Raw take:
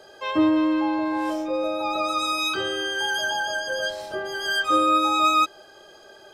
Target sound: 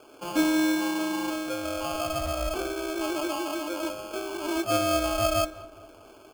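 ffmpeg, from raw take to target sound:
ffmpeg -i in.wav -filter_complex "[0:a]lowshelf=frequency=190:width_type=q:width=3:gain=-10,aecho=1:1:4.3:0.34,bandreject=frequency=52.4:width_type=h:width=4,bandreject=frequency=104.8:width_type=h:width=4,bandreject=frequency=157.2:width_type=h:width=4,bandreject=frequency=209.6:width_type=h:width=4,bandreject=frequency=262:width_type=h:width=4,bandreject=frequency=314.4:width_type=h:width=4,bandreject=frequency=366.8:width_type=h:width=4,bandreject=frequency=419.2:width_type=h:width=4,bandreject=frequency=471.6:width_type=h:width=4,bandreject=frequency=524:width_type=h:width=4,bandreject=frequency=576.4:width_type=h:width=4,acrusher=samples=23:mix=1:aa=0.000001,asplit=2[link_01][link_02];[link_02]adelay=203,lowpass=frequency=1700:poles=1,volume=-17.5dB,asplit=2[link_03][link_04];[link_04]adelay=203,lowpass=frequency=1700:poles=1,volume=0.54,asplit=2[link_05][link_06];[link_06]adelay=203,lowpass=frequency=1700:poles=1,volume=0.54,asplit=2[link_07][link_08];[link_08]adelay=203,lowpass=frequency=1700:poles=1,volume=0.54,asplit=2[link_09][link_10];[link_10]adelay=203,lowpass=frequency=1700:poles=1,volume=0.54[link_11];[link_03][link_05][link_07][link_09][link_11]amix=inputs=5:normalize=0[link_12];[link_01][link_12]amix=inputs=2:normalize=0,volume=-4.5dB" out.wav

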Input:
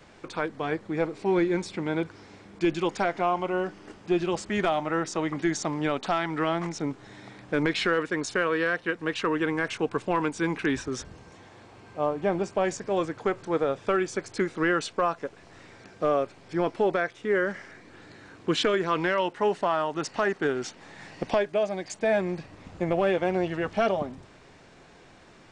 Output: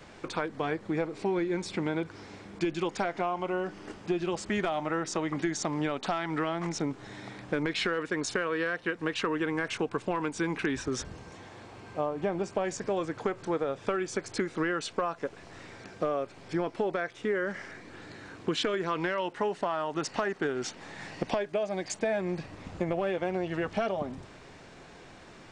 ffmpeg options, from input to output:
ffmpeg -i in.wav -af "acompressor=threshold=-29dB:ratio=6,volume=2.5dB" out.wav

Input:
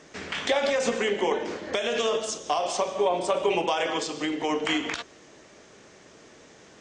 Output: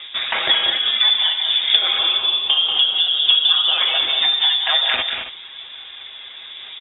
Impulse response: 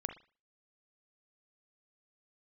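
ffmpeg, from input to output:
-af "equalizer=frequency=480:width=1.5:gain=6.5,aecho=1:1:7.1:0.46,apsyclip=11dB,acompressor=threshold=-15dB:ratio=6,aphaser=in_gain=1:out_gain=1:delay=2.9:decay=0.31:speed=0.6:type=sinusoidal,aecho=1:1:188|219|273:0.447|0.355|0.251,lowpass=frequency=3300:width_type=q:width=0.5098,lowpass=frequency=3300:width_type=q:width=0.6013,lowpass=frequency=3300:width_type=q:width=0.9,lowpass=frequency=3300:width_type=q:width=2.563,afreqshift=-3900,volume=-1dB"

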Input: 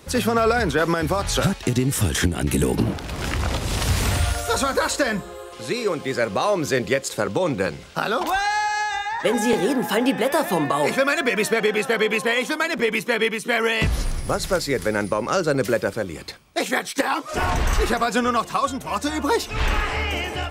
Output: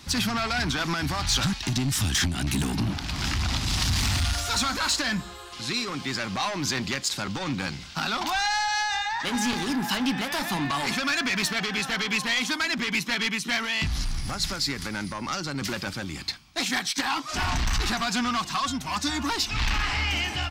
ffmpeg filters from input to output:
ffmpeg -i in.wav -filter_complex "[0:a]asettb=1/sr,asplit=3[link_01][link_02][link_03];[link_01]atrim=end=13.564[link_04];[link_02]atrim=start=13.56:end=15.62,asetpts=PTS-STARTPTS,afade=type=in:duration=0.004:curve=qsin,afade=type=out:start_time=2.056:duration=0.004:curve=qsin,acompressor=threshold=-21dB:ratio=6[link_05];[link_03]atrim=start=15.616[link_06];[link_04][link_05]acrossfade=duration=0.004:curve1=hsin:curve2=qsin[link_07];[link_07][link_06]acrossfade=duration=0.004:curve1=qsin:curve2=hsin,asoftclip=type=tanh:threshold=-20.5dB,firequalizer=gain_entry='entry(270,0);entry(470,-17);entry(770,-2);entry(4700,8);entry(9000,-3)':delay=0.05:min_phase=1" out.wav

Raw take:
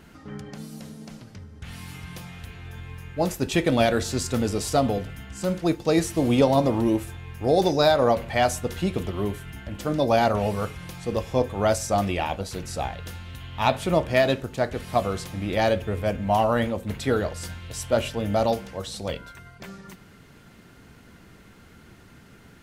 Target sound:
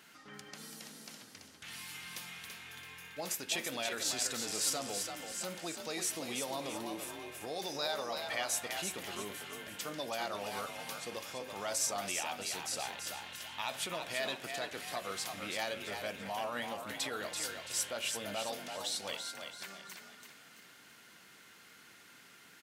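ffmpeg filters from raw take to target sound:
ffmpeg -i in.wav -filter_complex "[0:a]alimiter=limit=-19.5dB:level=0:latency=1:release=110,highpass=160,tiltshelf=frequency=870:gain=-9,asplit=6[link_01][link_02][link_03][link_04][link_05][link_06];[link_02]adelay=334,afreqshift=42,volume=-6dB[link_07];[link_03]adelay=668,afreqshift=84,volume=-14dB[link_08];[link_04]adelay=1002,afreqshift=126,volume=-21.9dB[link_09];[link_05]adelay=1336,afreqshift=168,volume=-29.9dB[link_10];[link_06]adelay=1670,afreqshift=210,volume=-37.8dB[link_11];[link_01][link_07][link_08][link_09][link_10][link_11]amix=inputs=6:normalize=0,volume=-8.5dB" out.wav

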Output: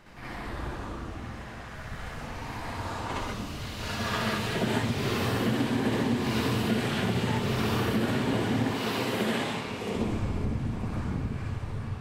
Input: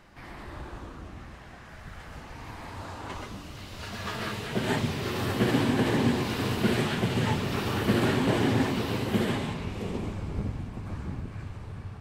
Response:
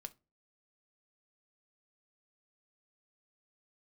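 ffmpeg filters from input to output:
-filter_complex "[0:a]asettb=1/sr,asplit=3[link_01][link_02][link_03];[link_01]atrim=end=8.714[link_04];[link_02]atrim=start=8.71:end=9.95,asetpts=PTS-STARTPTS,afade=type=in:duration=0.004:curve=qsin,afade=type=out:start_time=1.236:duration=0.004:curve=qsin,highpass=frequency=390:poles=1[link_05];[link_03]atrim=start=9.946[link_06];[link_04][link_05]acrossfade=duration=0.004:curve1=hsin:curve2=qsin[link_07];[link_07][link_06]acrossfade=duration=0.004:curve1=qsin:curve2=hsin,acompressor=threshold=-29dB:ratio=10,asplit=2[link_08][link_09];[1:a]atrim=start_sample=2205,adelay=63[link_10];[link_09][link_10]afir=irnorm=-1:irlink=0,volume=9dB[link_11];[link_08][link_11]amix=inputs=2:normalize=0"

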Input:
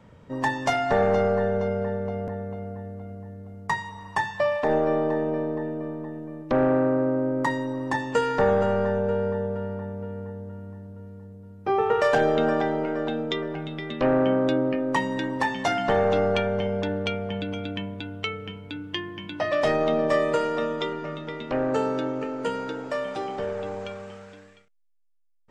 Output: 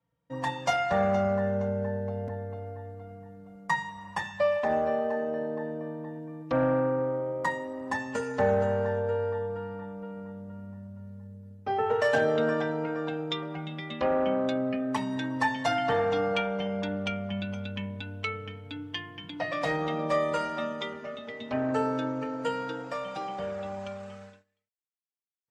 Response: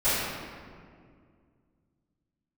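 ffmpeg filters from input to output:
-filter_complex "[0:a]highpass=frequency=54:width=0.5412,highpass=frequency=54:width=1.3066,equalizer=frequency=370:width_type=o:width=0.26:gain=-12.5,bandreject=frequency=150.9:width_type=h:width=4,bandreject=frequency=301.8:width_type=h:width=4,bandreject=frequency=452.7:width_type=h:width=4,bandreject=frequency=603.6:width_type=h:width=4,bandreject=frequency=754.5:width_type=h:width=4,bandreject=frequency=905.4:width_type=h:width=4,bandreject=frequency=1056.3:width_type=h:width=4,bandreject=frequency=1207.2:width_type=h:width=4,bandreject=frequency=1358.1:width_type=h:width=4,bandreject=frequency=1509:width_type=h:width=4,bandreject=frequency=1659.9:width_type=h:width=4,bandreject=frequency=1810.8:width_type=h:width=4,bandreject=frequency=1961.7:width_type=h:width=4,bandreject=frequency=2112.6:width_type=h:width=4,bandreject=frequency=2263.5:width_type=h:width=4,bandreject=frequency=2414.4:width_type=h:width=4,bandreject=frequency=2565.3:width_type=h:width=4,bandreject=frequency=2716.2:width_type=h:width=4,bandreject=frequency=2867.1:width_type=h:width=4,bandreject=frequency=3018:width_type=h:width=4,bandreject=frequency=3168.9:width_type=h:width=4,bandreject=frequency=3319.8:width_type=h:width=4,agate=range=-24dB:threshold=-45dB:ratio=16:detection=peak,asplit=2[link_01][link_02];[link_02]adelay=3.9,afreqshift=0.31[link_03];[link_01][link_03]amix=inputs=2:normalize=1"

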